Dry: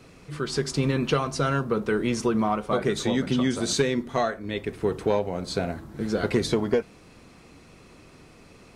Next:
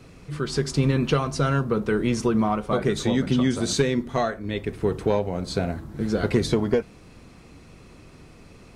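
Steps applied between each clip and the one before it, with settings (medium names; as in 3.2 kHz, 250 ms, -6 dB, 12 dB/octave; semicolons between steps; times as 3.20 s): bass shelf 170 Hz +7.5 dB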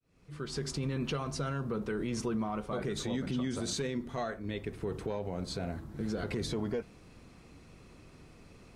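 fade-in on the opening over 0.68 s; peak limiter -18.5 dBFS, peak gain reduction 10 dB; trim -7 dB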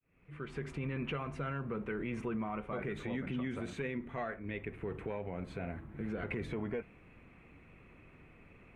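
resonant high shelf 3.4 kHz -13 dB, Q 3; trim -4 dB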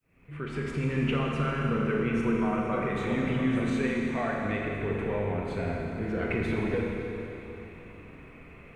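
Schroeder reverb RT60 3.2 s, combs from 27 ms, DRR -1.5 dB; trim +6 dB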